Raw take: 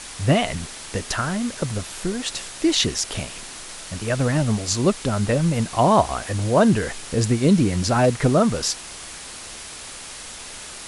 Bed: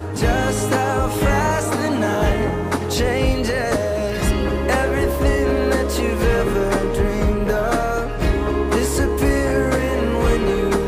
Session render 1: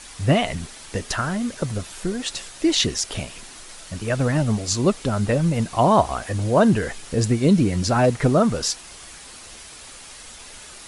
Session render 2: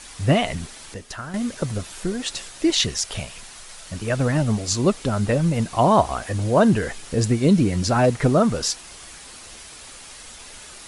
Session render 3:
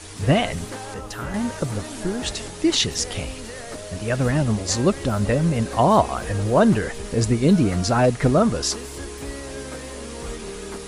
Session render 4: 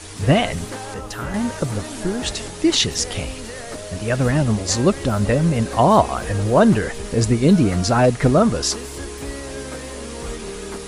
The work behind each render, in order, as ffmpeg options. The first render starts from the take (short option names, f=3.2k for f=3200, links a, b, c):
-af "afftdn=nr=6:nf=-37"
-filter_complex "[0:a]asettb=1/sr,asplit=3[a][b][c];[a]atrim=end=2.704[d];[b]atrim=start=2.7:end=3.86,asetpts=PTS-STARTPTS,afade=t=in:d=0.004:c=qsin,afade=t=out:st=1.156:d=0.004:c=qsin,equalizer=f=300:t=o:w=0.82:g=-9[e];[c]atrim=start=3.856[f];[d][e]acrossfade=d=0.004:c1=hsin:c2=qsin[g];[g][f]acrossfade=d=0.004:c1=qsin:c2=hsin,asplit=3[h][i][j];[h]atrim=end=0.942[k];[i]atrim=start=0.938:end=1.342,asetpts=PTS-STARTPTS,volume=-9dB[l];[j]atrim=start=1.338[m];[k][l]acrossfade=d=0.004:c1=hsin:c2=hsin[n];[n][m]acrossfade=d=0.004:c1=hsin:c2=hsin"
-filter_complex "[1:a]volume=-16dB[a];[0:a][a]amix=inputs=2:normalize=0"
-af "volume=2.5dB"